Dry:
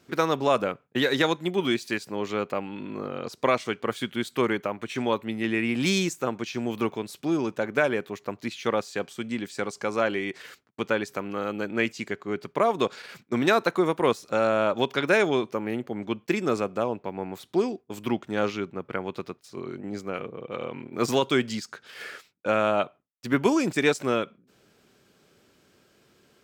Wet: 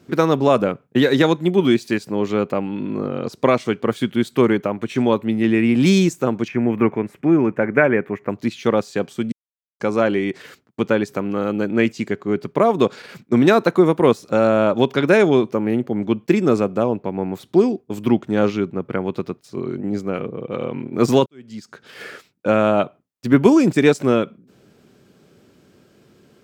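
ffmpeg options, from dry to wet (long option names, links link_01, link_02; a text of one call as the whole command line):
ffmpeg -i in.wav -filter_complex "[0:a]asettb=1/sr,asplit=3[link_01][link_02][link_03];[link_01]atrim=end=6.484[link_04];[link_02]atrim=start=6.48:end=8.29,asetpts=PTS-STARTPTS,afade=type=in:duration=0.004:curve=qsin,afade=type=out:start_time=1.806:duration=0.004:curve=qsin,highshelf=frequency=2900:width_type=q:width=3:gain=-12[link_05];[link_03]atrim=start=8.286[link_06];[link_04][link_05]acrossfade=duration=0.004:curve1=hsin:curve2=qsin[link_07];[link_07][link_06]acrossfade=duration=0.004:curve1=qsin:curve2=hsin,asplit=4[link_08][link_09][link_10][link_11];[link_08]atrim=end=9.32,asetpts=PTS-STARTPTS,afade=type=out:start_time=9.316:duration=0.004:curve=hsin[link_12];[link_09]atrim=start=9.32:end=9.8,asetpts=PTS-STARTPTS,volume=0[link_13];[link_10]atrim=start=9.8:end=21.26,asetpts=PTS-STARTPTS,afade=type=in:duration=0.004:curve=hsin,afade=type=out:start_time=11.456:duration=0.004:curve=hsin[link_14];[link_11]atrim=start=21.26,asetpts=PTS-STARTPTS,afade=type=in:duration=0.61:curve=qua[link_15];[link_12][link_13][link_14][link_15]concat=n=4:v=0:a=1,equalizer=frequency=170:width=0.32:gain=10,volume=2dB" out.wav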